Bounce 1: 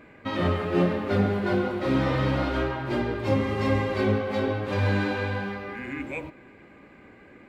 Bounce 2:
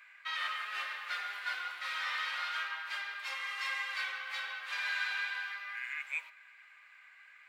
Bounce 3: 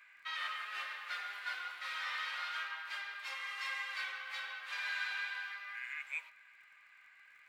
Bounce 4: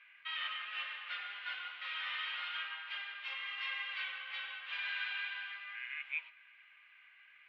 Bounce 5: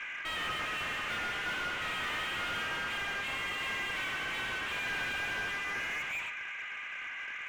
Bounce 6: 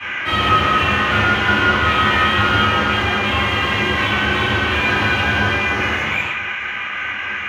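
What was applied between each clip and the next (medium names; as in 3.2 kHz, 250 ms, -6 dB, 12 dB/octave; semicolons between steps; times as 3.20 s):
high-pass 1.4 kHz 24 dB/octave
crackle 41 per s -55 dBFS; trim -3.5 dB
four-pole ladder low-pass 3.4 kHz, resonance 60%; trim +6 dB
overdrive pedal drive 33 dB, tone 1.1 kHz, clips at -27 dBFS; trim +3.5 dB
reverberation RT60 0.40 s, pre-delay 3 ms, DRR -9 dB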